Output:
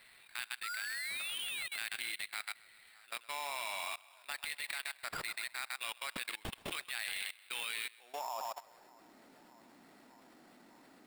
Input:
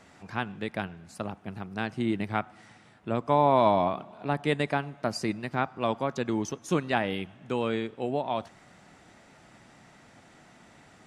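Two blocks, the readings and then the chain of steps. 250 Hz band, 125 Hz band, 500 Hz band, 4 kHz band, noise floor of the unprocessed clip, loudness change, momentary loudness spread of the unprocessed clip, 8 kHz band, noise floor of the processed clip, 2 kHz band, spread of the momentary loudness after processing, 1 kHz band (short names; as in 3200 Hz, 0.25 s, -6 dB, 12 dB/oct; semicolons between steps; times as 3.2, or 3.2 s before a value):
-28.0 dB, -26.0 dB, -23.5 dB, +1.0 dB, -56 dBFS, -10.5 dB, 14 LU, +3.0 dB, -62 dBFS, -2.5 dB, 8 LU, -15.5 dB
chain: high-pass sweep 2200 Hz -> 270 Hz, 7.83–9.04; band-limited delay 0.608 s, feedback 71%, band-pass 750 Hz, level -21.5 dB; painted sound rise, 0.63–1.67, 1300–4300 Hz -34 dBFS; sample-rate reducer 6200 Hz, jitter 0%; thinning echo 0.129 s, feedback 43%, high-pass 480 Hz, level -9 dB; level quantiser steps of 21 dB; gain +2 dB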